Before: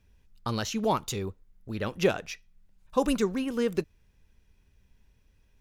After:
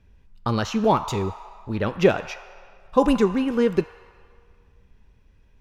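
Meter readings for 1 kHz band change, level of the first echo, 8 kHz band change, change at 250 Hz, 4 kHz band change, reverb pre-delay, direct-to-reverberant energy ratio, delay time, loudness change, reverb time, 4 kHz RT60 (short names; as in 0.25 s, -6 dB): +8.0 dB, none, -2.0 dB, +7.5 dB, +2.5 dB, 3 ms, 9.0 dB, none, +7.0 dB, 2.2 s, 1.5 s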